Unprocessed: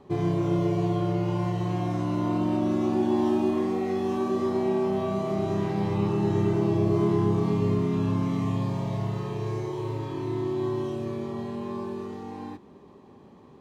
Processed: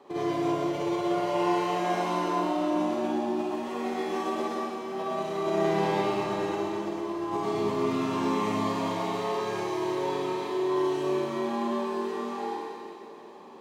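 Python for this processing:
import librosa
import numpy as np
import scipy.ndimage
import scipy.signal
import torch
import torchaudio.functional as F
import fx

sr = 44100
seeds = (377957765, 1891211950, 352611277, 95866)

y = scipy.signal.sosfilt(scipy.signal.butter(2, 420.0, 'highpass', fs=sr, output='sos'), x)
y = fx.over_compress(y, sr, threshold_db=-33.0, ratio=-0.5)
y = fx.rev_schroeder(y, sr, rt60_s=2.5, comb_ms=38, drr_db=-5.0)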